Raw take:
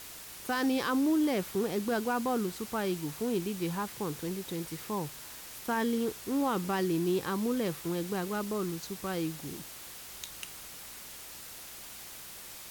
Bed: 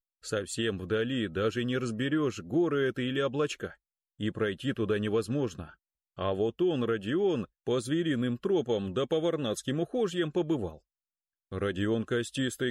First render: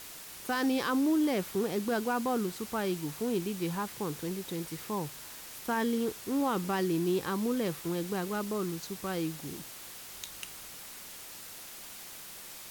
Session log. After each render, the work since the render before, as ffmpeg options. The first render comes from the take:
ffmpeg -i in.wav -af "bandreject=frequency=60:width_type=h:width=4,bandreject=frequency=120:width_type=h:width=4" out.wav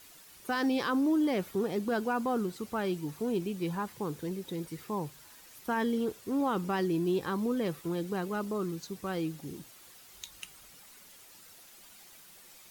ffmpeg -i in.wav -af "afftdn=noise_reduction=10:noise_floor=-46" out.wav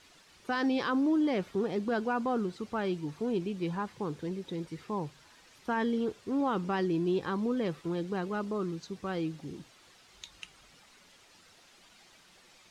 ffmpeg -i in.wav -af "lowpass=5300" out.wav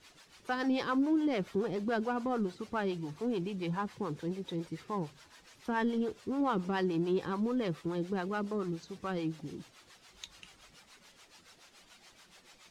ffmpeg -i in.wav -filter_complex "[0:a]asplit=2[link_01][link_02];[link_02]asoftclip=type=tanh:threshold=-35dB,volume=-6dB[link_03];[link_01][link_03]amix=inputs=2:normalize=0,acrossover=split=480[link_04][link_05];[link_04]aeval=exprs='val(0)*(1-0.7/2+0.7/2*cos(2*PI*7*n/s))':channel_layout=same[link_06];[link_05]aeval=exprs='val(0)*(1-0.7/2-0.7/2*cos(2*PI*7*n/s))':channel_layout=same[link_07];[link_06][link_07]amix=inputs=2:normalize=0" out.wav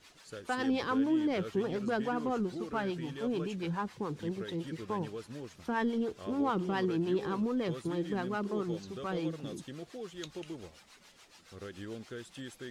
ffmpeg -i in.wav -i bed.wav -filter_complex "[1:a]volume=-14dB[link_01];[0:a][link_01]amix=inputs=2:normalize=0" out.wav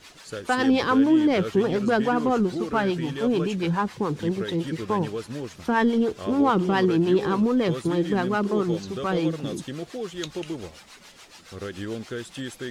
ffmpeg -i in.wav -af "volume=10.5dB" out.wav

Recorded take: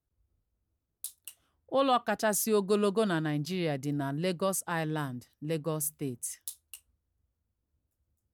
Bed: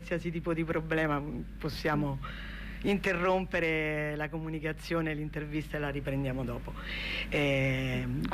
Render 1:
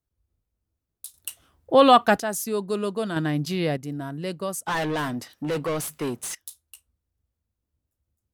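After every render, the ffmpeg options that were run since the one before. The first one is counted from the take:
ffmpeg -i in.wav -filter_complex "[0:a]asettb=1/sr,asplit=3[link_01][link_02][link_03];[link_01]atrim=end=3.164[link_04];[link_02]atrim=start=3.16:end=3.77,asetpts=PTS-STARTPTS,afade=type=in:duration=0.004:curve=qsin,afade=type=out:start_time=0.606:duration=0.004:curve=qsin,acontrast=60[link_05];[link_03]atrim=start=3.766[link_06];[link_04][link_05]acrossfade=duration=0.004:curve1=hsin:curve2=qsin[link_07];[link_07][link_06]acrossfade=duration=0.004:curve1=qsin:curve2=hsin,asettb=1/sr,asplit=3[link_08][link_09][link_10];[link_08]atrim=end=4.664[link_11];[link_09]atrim=start=4.66:end=6.35,asetpts=PTS-STARTPTS,afade=type=in:duration=0.004:curve=qsin,afade=type=out:start_time=1.686:duration=0.004:curve=qsin,asplit=2[link_12][link_13];[link_13]highpass=frequency=720:poles=1,volume=28dB,asoftclip=type=tanh:threshold=-18.5dB[link_14];[link_12][link_14]amix=inputs=2:normalize=0,lowpass=frequency=3800:poles=1,volume=-6dB[link_15];[link_10]atrim=start=6.346[link_16];[link_11][link_15]acrossfade=duration=0.004:curve1=hsin:curve2=qsin[link_17];[link_17][link_16]acrossfade=duration=0.004:curve1=qsin:curve2=hsin,asplit=3[link_18][link_19][link_20];[link_18]atrim=end=1.142[link_21];[link_19]atrim=start=1.138:end=2.202,asetpts=PTS-STARTPTS,volume=11.5dB[link_22];[link_20]atrim=start=2.198[link_23];[link_21][link_22]acrossfade=duration=0.004:curve1=hsin:curve2=hsin[link_24];[link_24][link_23]acrossfade=duration=0.004:curve1=hsin:curve2=hsin" out.wav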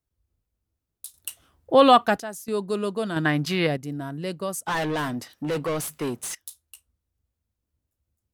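ffmpeg -i in.wav -filter_complex "[0:a]asettb=1/sr,asplit=3[link_01][link_02][link_03];[link_01]atrim=end=3.254[link_04];[link_02]atrim=start=3.25:end=3.67,asetpts=PTS-STARTPTS,afade=type=in:duration=0.004:curve=qsin,afade=type=out:start_time=0.416:duration=0.004:curve=qsin,equalizer=frequency=1500:width=0.61:gain=10.5[link_05];[link_03]atrim=start=3.666[link_06];[link_04][link_05]acrossfade=duration=0.004:curve1=hsin:curve2=qsin[link_07];[link_07][link_06]acrossfade=duration=0.004:curve1=qsin:curve2=hsin,asplit=2[link_08][link_09];[link_08]atrim=end=2.48,asetpts=PTS-STARTPTS,afade=type=out:start_time=1.91:duration=0.57:silence=0.188365[link_10];[link_09]atrim=start=2.48,asetpts=PTS-STARTPTS,afade=type=in:duration=0.004:curve=hsin:silence=0.188365[link_11];[link_10][link_11]concat=n=2:v=0:a=1" out.wav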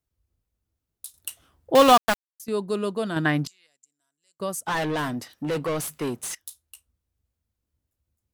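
ffmpeg -i in.wav -filter_complex "[0:a]asettb=1/sr,asplit=3[link_01][link_02][link_03];[link_01]atrim=end=1.754[link_04];[link_02]atrim=start=1.75:end=2.4,asetpts=PTS-STARTPTS,afade=type=in:duration=0.004:curve=qsin,afade=type=out:start_time=0.646:duration=0.004:curve=qsin,aeval=exprs='val(0)*gte(abs(val(0)),0.126)':channel_layout=same[link_05];[link_03]atrim=start=2.396[link_06];[link_04][link_05]acrossfade=duration=0.004:curve1=hsin:curve2=qsin[link_07];[link_07][link_06]acrossfade=duration=0.004:curve1=qsin:curve2=hsin,asettb=1/sr,asplit=3[link_08][link_09][link_10];[link_08]atrim=end=3.474[link_11];[link_09]atrim=start=3.47:end=4.4,asetpts=PTS-STARTPTS,afade=type=in:duration=0.004:curve=qsin,afade=type=out:start_time=0.926:duration=0.004:curve=qsin,bandpass=frequency=7300:width_type=q:width=16[link_12];[link_10]atrim=start=4.396[link_13];[link_11][link_12]acrossfade=duration=0.004:curve1=hsin:curve2=qsin[link_14];[link_14][link_13]acrossfade=duration=0.004:curve1=qsin:curve2=hsin" out.wav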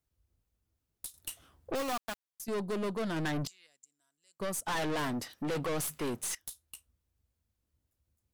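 ffmpeg -i in.wav -af "aeval=exprs='(tanh(35.5*val(0)+0.25)-tanh(0.25))/35.5':channel_layout=same" out.wav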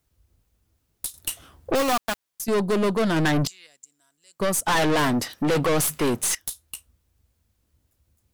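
ffmpeg -i in.wav -af "volume=12dB" out.wav

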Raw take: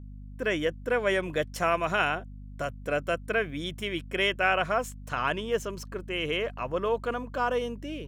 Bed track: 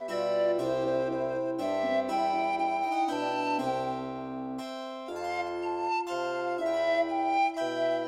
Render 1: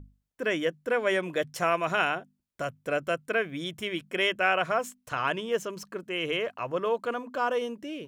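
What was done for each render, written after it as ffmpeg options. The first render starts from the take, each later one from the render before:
ffmpeg -i in.wav -af "bandreject=frequency=50:width_type=h:width=6,bandreject=frequency=100:width_type=h:width=6,bandreject=frequency=150:width_type=h:width=6,bandreject=frequency=200:width_type=h:width=6,bandreject=frequency=250:width_type=h:width=6" out.wav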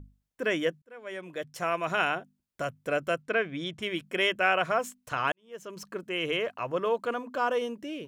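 ffmpeg -i in.wav -filter_complex "[0:a]asplit=3[link_01][link_02][link_03];[link_01]afade=type=out:start_time=3.22:duration=0.02[link_04];[link_02]lowpass=5600,afade=type=in:start_time=3.22:duration=0.02,afade=type=out:start_time=3.81:duration=0.02[link_05];[link_03]afade=type=in:start_time=3.81:duration=0.02[link_06];[link_04][link_05][link_06]amix=inputs=3:normalize=0,asplit=3[link_07][link_08][link_09];[link_07]atrim=end=0.82,asetpts=PTS-STARTPTS,afade=type=out:start_time=0.816:duration=0.004:curve=hsin[link_10];[link_08]atrim=start=0.82:end=5.32,asetpts=PTS-STARTPTS,afade=type=in:duration=1.33,afade=type=out:start_time=4.496:duration=0.004:curve=hsin[link_11];[link_09]atrim=start=5.32,asetpts=PTS-STARTPTS,afade=type=in:duration=0.53:curve=qua[link_12];[link_10][link_11][link_12]concat=n=3:v=0:a=1" out.wav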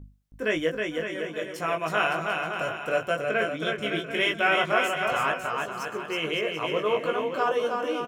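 ffmpeg -i in.wav -filter_complex "[0:a]asplit=2[link_01][link_02];[link_02]adelay=19,volume=-4dB[link_03];[link_01][link_03]amix=inputs=2:normalize=0,aecho=1:1:320|560|740|875|976.2:0.631|0.398|0.251|0.158|0.1" out.wav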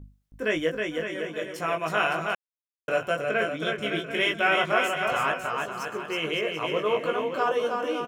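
ffmpeg -i in.wav -filter_complex "[0:a]asplit=3[link_01][link_02][link_03];[link_01]atrim=end=2.35,asetpts=PTS-STARTPTS,afade=type=out:start_time=2.346:duration=0.004:curve=hsin[link_04];[link_02]atrim=start=2.35:end=2.88,asetpts=PTS-STARTPTS,volume=0[link_05];[link_03]atrim=start=2.88,asetpts=PTS-STARTPTS,afade=type=in:duration=0.004:curve=hsin[link_06];[link_04][link_05][link_06]concat=n=3:v=0:a=1" out.wav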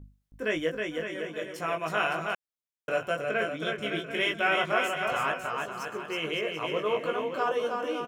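ffmpeg -i in.wav -af "volume=-3dB" out.wav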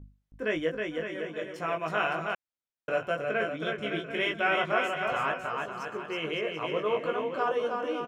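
ffmpeg -i in.wav -af "aemphasis=mode=reproduction:type=50kf" out.wav

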